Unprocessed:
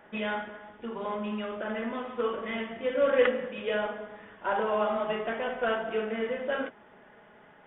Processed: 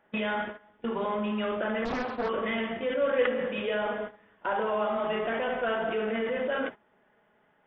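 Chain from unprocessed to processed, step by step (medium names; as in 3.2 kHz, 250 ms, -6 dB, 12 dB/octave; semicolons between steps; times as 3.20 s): gate -41 dBFS, range -17 dB; in parallel at +0.5 dB: compressor with a negative ratio -35 dBFS, ratio -1; 1.85–2.29 s: on the sum: loudspeaker Doppler distortion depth 0.98 ms; trim -3 dB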